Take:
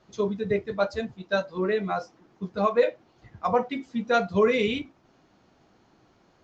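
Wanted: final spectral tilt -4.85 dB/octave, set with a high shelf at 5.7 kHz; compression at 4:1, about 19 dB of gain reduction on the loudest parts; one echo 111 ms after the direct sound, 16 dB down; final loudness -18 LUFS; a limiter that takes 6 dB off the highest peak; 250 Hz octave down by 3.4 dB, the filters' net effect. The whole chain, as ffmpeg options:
-af "equalizer=f=250:t=o:g=-4.5,highshelf=f=5700:g=6,acompressor=threshold=0.00891:ratio=4,alimiter=level_in=2.99:limit=0.0631:level=0:latency=1,volume=0.335,aecho=1:1:111:0.158,volume=22.4"

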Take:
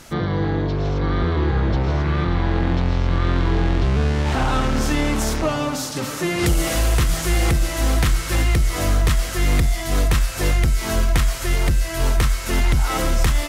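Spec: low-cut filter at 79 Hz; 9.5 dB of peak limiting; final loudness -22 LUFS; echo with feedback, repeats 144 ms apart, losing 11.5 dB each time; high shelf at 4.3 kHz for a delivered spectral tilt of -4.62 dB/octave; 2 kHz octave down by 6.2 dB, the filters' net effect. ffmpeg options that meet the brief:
-af "highpass=79,equalizer=f=2000:t=o:g=-8.5,highshelf=f=4300:g=3.5,alimiter=limit=0.168:level=0:latency=1,aecho=1:1:144|288|432:0.266|0.0718|0.0194,volume=1.41"

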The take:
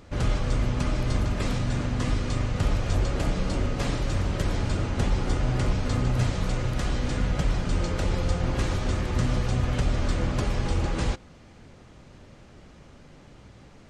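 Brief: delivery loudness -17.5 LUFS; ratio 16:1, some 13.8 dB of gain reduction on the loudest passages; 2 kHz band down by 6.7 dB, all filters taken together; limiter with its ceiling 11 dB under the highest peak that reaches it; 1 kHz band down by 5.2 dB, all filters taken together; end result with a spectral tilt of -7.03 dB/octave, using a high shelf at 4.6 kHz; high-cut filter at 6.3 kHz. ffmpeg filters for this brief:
-af "lowpass=6300,equalizer=f=1000:t=o:g=-5,equalizer=f=2000:t=o:g=-6.5,highshelf=f=4600:g=-3,acompressor=threshold=0.0224:ratio=16,volume=28.2,alimiter=limit=0.422:level=0:latency=1"

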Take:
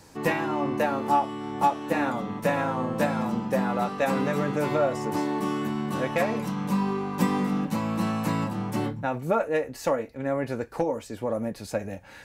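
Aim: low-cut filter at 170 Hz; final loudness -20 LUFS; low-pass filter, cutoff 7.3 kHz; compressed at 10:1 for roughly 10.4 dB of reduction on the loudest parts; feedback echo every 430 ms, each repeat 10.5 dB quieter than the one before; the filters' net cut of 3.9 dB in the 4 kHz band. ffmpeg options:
-af "highpass=170,lowpass=7300,equalizer=f=4000:t=o:g=-5,acompressor=threshold=0.0355:ratio=10,aecho=1:1:430|860|1290:0.299|0.0896|0.0269,volume=5.01"

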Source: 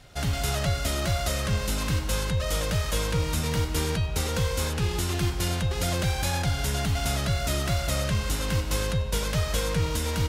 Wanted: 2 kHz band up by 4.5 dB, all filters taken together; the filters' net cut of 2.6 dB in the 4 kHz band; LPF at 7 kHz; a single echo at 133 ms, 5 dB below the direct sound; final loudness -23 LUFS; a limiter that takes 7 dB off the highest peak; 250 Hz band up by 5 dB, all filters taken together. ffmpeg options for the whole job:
-af "lowpass=7000,equalizer=f=250:t=o:g=7.5,equalizer=f=2000:t=o:g=7,equalizer=f=4000:t=o:g=-5.5,alimiter=limit=0.106:level=0:latency=1,aecho=1:1:133:0.562,volume=1.68"

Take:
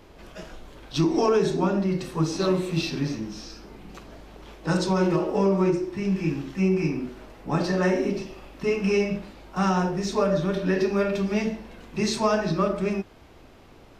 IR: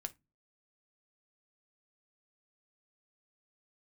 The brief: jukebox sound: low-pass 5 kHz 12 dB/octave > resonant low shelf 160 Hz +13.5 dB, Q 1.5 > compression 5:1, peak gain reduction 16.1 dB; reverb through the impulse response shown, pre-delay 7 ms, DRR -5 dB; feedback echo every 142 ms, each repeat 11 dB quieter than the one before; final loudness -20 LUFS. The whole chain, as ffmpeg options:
-filter_complex "[0:a]aecho=1:1:142|284|426:0.282|0.0789|0.0221,asplit=2[s0][s1];[1:a]atrim=start_sample=2205,adelay=7[s2];[s1][s2]afir=irnorm=-1:irlink=0,volume=2.37[s3];[s0][s3]amix=inputs=2:normalize=0,lowpass=5000,lowshelf=f=160:t=q:w=1.5:g=13.5,acompressor=threshold=0.0794:ratio=5,volume=2.11"

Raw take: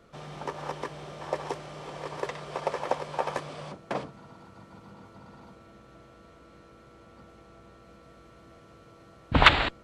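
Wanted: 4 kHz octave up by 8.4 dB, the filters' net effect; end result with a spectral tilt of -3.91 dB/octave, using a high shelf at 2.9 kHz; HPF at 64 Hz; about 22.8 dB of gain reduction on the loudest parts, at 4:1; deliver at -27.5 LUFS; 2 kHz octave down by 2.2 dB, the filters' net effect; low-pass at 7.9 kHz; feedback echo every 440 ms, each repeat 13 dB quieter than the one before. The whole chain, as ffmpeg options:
-af "highpass=64,lowpass=7900,equalizer=f=2000:t=o:g=-9,highshelf=f=2900:g=8,equalizer=f=4000:t=o:g=8.5,acompressor=threshold=0.0126:ratio=4,aecho=1:1:440|880|1320:0.224|0.0493|0.0108,volume=6.31"

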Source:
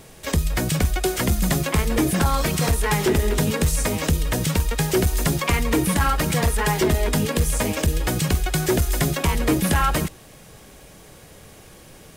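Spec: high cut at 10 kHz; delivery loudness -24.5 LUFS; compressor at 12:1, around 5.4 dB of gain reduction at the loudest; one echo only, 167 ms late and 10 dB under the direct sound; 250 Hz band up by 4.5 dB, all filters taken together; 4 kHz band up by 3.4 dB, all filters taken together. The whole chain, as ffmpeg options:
-af "lowpass=10000,equalizer=f=250:t=o:g=6.5,equalizer=f=4000:t=o:g=4.5,acompressor=threshold=0.126:ratio=12,aecho=1:1:167:0.316,volume=0.841"

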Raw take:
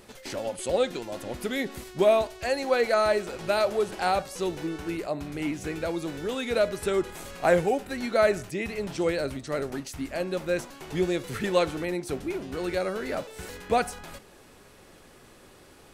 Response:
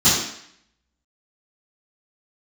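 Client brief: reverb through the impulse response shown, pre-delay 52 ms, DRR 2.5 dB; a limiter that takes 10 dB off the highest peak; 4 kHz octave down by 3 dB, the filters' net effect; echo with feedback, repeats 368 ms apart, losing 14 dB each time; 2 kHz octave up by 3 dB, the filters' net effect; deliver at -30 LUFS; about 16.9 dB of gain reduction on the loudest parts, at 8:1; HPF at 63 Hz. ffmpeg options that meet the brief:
-filter_complex "[0:a]highpass=63,equalizer=f=2000:t=o:g=5,equalizer=f=4000:t=o:g=-5,acompressor=threshold=0.02:ratio=8,alimiter=level_in=2:limit=0.0631:level=0:latency=1,volume=0.501,aecho=1:1:368|736:0.2|0.0399,asplit=2[s0][s1];[1:a]atrim=start_sample=2205,adelay=52[s2];[s1][s2]afir=irnorm=-1:irlink=0,volume=0.075[s3];[s0][s3]amix=inputs=2:normalize=0,volume=2.11"

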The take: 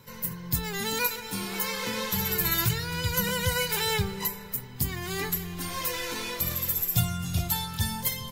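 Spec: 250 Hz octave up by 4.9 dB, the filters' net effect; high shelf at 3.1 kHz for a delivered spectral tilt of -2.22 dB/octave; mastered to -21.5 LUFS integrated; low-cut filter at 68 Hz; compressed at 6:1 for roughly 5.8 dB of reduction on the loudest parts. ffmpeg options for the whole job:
-af "highpass=68,equalizer=f=250:t=o:g=8,highshelf=f=3100:g=8,acompressor=threshold=0.0794:ratio=6,volume=1.58"

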